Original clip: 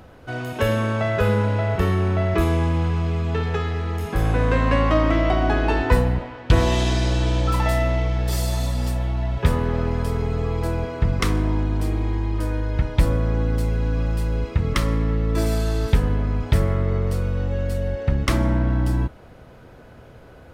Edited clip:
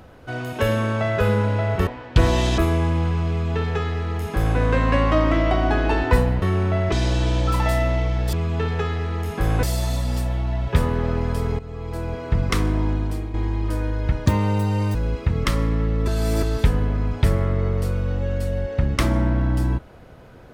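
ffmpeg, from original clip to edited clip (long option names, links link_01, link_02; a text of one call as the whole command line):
ffmpeg -i in.wav -filter_complex "[0:a]asplit=13[link_01][link_02][link_03][link_04][link_05][link_06][link_07][link_08][link_09][link_10][link_11][link_12][link_13];[link_01]atrim=end=1.872[link_14];[link_02]atrim=start=6.208:end=6.922[link_15];[link_03]atrim=start=2.368:end=6.212[link_16];[link_04]atrim=start=1.868:end=2.372[link_17];[link_05]atrim=start=6.918:end=8.332[link_18];[link_06]atrim=start=3.078:end=4.382[link_19];[link_07]atrim=start=8.328:end=10.29,asetpts=PTS-STARTPTS,afade=type=out:start_time=1.958:duration=0.004:curve=hsin:silence=0.188365[link_20];[link_08]atrim=start=10.29:end=12.04,asetpts=PTS-STARTPTS,afade=type=in:duration=0.79:silence=0.188365,afade=type=out:start_time=1.36:duration=0.39:silence=0.354813[link_21];[link_09]atrim=start=12.04:end=12.964,asetpts=PTS-STARTPTS,afade=type=in:duration=0.004:curve=hsin:silence=0.354813[link_22];[link_10]atrim=start=12.96:end=14.24,asetpts=PTS-STARTPTS,asetrate=82026,aresample=44100,atrim=end_sample=30348,asetpts=PTS-STARTPTS[link_23];[link_11]atrim=start=14.236:end=15.372[link_24];[link_12]atrim=start=15.368:end=15.722,asetpts=PTS-STARTPTS,areverse[link_25];[link_13]atrim=start=15.718[link_26];[link_14][link_15]acrossfade=duration=0.004:curve1=hsin:curve2=hsin[link_27];[link_27][link_16]acrossfade=duration=0.004:curve1=hsin:curve2=hsin[link_28];[link_28][link_17]acrossfade=duration=0.004:curve1=hsin:curve2=hsin[link_29];[link_29][link_18]acrossfade=duration=0.004:curve1=hsin:curve2=hsin[link_30];[link_30][link_19]acrossfade=duration=0.004:curve1=hsin:curve2=hsin[link_31];[link_20][link_21][link_22]concat=n=3:v=0:a=1[link_32];[link_31][link_32]acrossfade=duration=0.004:curve1=hsin:curve2=hsin[link_33];[link_33][link_23]acrossfade=duration=0.004:curve1=hsin:curve2=hsin[link_34];[link_34][link_24]acrossfade=duration=0.004:curve1=hsin:curve2=hsin[link_35];[link_35][link_25]acrossfade=duration=0.004:curve1=hsin:curve2=hsin[link_36];[link_36][link_26]acrossfade=duration=0.004:curve1=hsin:curve2=hsin" out.wav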